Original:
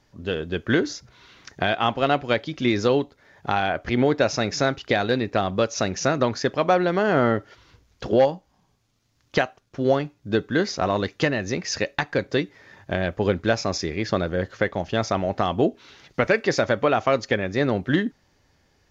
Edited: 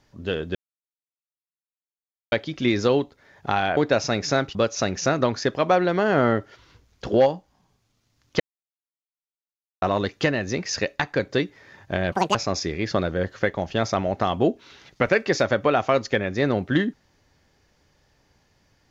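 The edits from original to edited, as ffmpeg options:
-filter_complex "[0:a]asplit=9[s0][s1][s2][s3][s4][s5][s6][s7][s8];[s0]atrim=end=0.55,asetpts=PTS-STARTPTS,afade=t=out:st=0.546:d=0.004:c=hsin[s9];[s1]atrim=start=0.55:end=2.32,asetpts=PTS-STARTPTS,volume=0[s10];[s2]atrim=start=2.32:end=3.772,asetpts=PTS-STARTPTS,afade=t=in:d=0.004:c=hsin[s11];[s3]atrim=start=4.058:end=4.842[s12];[s4]atrim=start=5.538:end=9.39,asetpts=PTS-STARTPTS,afade=t=out:st=3.848:d=0.004:c=hsin[s13];[s5]atrim=start=9.39:end=10.81,asetpts=PTS-STARTPTS,volume=0[s14];[s6]atrim=start=10.81:end=13.114,asetpts=PTS-STARTPTS,afade=t=in:d=0.004:c=hsin[s15];[s7]atrim=start=13.11:end=13.53,asetpts=PTS-STARTPTS,asetrate=81144,aresample=44100,atrim=end_sample=10066,asetpts=PTS-STARTPTS[s16];[s8]atrim=start=13.526[s17];[s9][s10][s11]concat=n=3:v=0:a=1[s18];[s18][s12]acrossfade=d=0.004:c1=hsin:c2=hsin[s19];[s13][s14][s15]concat=n=3:v=0:a=1[s20];[s19][s20]acrossfade=d=0.004:c1=hsin:c2=hsin[s21];[s21][s16]acrossfade=d=0.004:c1=hsin:c2=hsin[s22];[s22][s17]acrossfade=d=0.004:c1=hsin:c2=hsin"

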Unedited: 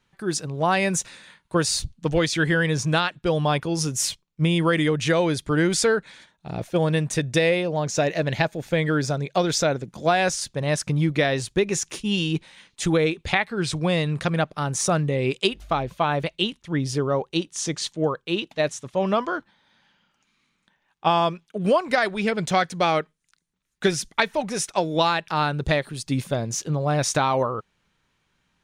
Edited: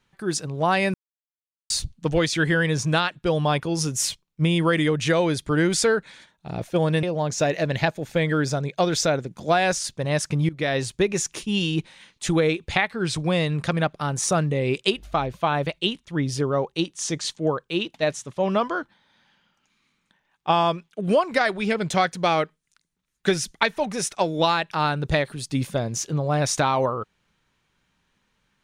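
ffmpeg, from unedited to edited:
-filter_complex "[0:a]asplit=5[s0][s1][s2][s3][s4];[s0]atrim=end=0.94,asetpts=PTS-STARTPTS,afade=t=out:st=0.936:d=0.004:c=hsin[s5];[s1]atrim=start=0.94:end=1.7,asetpts=PTS-STARTPTS,volume=0[s6];[s2]atrim=start=1.7:end=7.032,asetpts=PTS-STARTPTS,afade=t=in:d=0.004:c=hsin[s7];[s3]atrim=start=7.598:end=11.06,asetpts=PTS-STARTPTS,afade=t=out:st=3.458:d=0.004:c=hsin:silence=0.112202[s8];[s4]atrim=start=11.06,asetpts=PTS-STARTPTS,afade=t=in:d=0.27:silence=0.112202[s9];[s5][s6][s7]concat=n=3:v=0:a=1[s10];[s8][s9]concat=n=2:v=0:a=1[s11];[s10][s11]acrossfade=d=0.004:c1=hsin:c2=hsin"

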